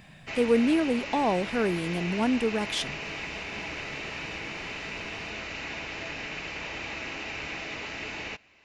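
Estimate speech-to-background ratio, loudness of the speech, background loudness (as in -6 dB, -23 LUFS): 8.0 dB, -27.0 LUFS, -35.0 LUFS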